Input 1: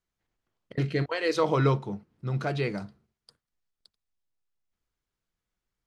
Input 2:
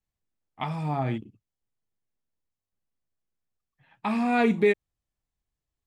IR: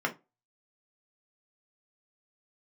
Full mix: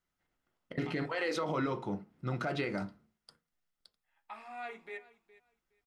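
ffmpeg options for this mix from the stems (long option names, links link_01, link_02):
-filter_complex "[0:a]alimiter=limit=-19.5dB:level=0:latency=1:release=156,volume=-2.5dB,asplit=2[link_01][link_02];[link_02]volume=-9dB[link_03];[1:a]highpass=640,adelay=250,volume=-20dB,asplit=3[link_04][link_05][link_06];[link_05]volume=-9dB[link_07];[link_06]volume=-15.5dB[link_08];[2:a]atrim=start_sample=2205[link_09];[link_03][link_07]amix=inputs=2:normalize=0[link_10];[link_10][link_09]afir=irnorm=-1:irlink=0[link_11];[link_08]aecho=0:1:415|830|1245:1|0.18|0.0324[link_12];[link_01][link_04][link_11][link_12]amix=inputs=4:normalize=0,alimiter=limit=-24dB:level=0:latency=1:release=57"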